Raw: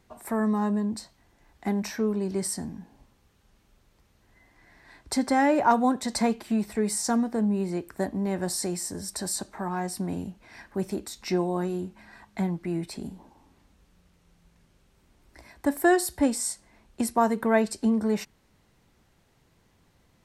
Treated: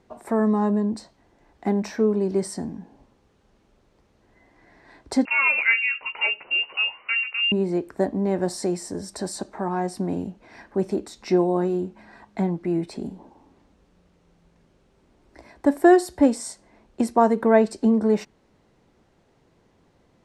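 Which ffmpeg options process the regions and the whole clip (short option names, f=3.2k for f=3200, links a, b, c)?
-filter_complex "[0:a]asettb=1/sr,asplit=3[a][b][c];[a]atrim=end=5.254[d];[b]atrim=start=5.25:end=7.52,asetpts=PTS-STARTPTS,afade=t=in:d=0.004:c=qsin,afade=t=out:st=2.266:d=0.004:c=qsin,asplit=2[e][f];[f]adelay=14,volume=-8dB[g];[e][g]amix=inputs=2:normalize=0,atrim=end_sample=100107,lowpass=f=2.6k:t=q:w=0.5098,lowpass=f=2.6k:t=q:w=0.6013,lowpass=f=2.6k:t=q:w=0.9,lowpass=f=2.6k:t=q:w=2.563,afreqshift=-3000[h];[c]atrim=start=7.516[i];[d][h]acrossfade=d=0.004:c1=hsin:c2=qsin[j];[j][i]acrossfade=d=0.004:c1=qsin:c2=hsin,lowpass=8k,equalizer=f=430:t=o:w=2.6:g=9.5,volume=-2dB"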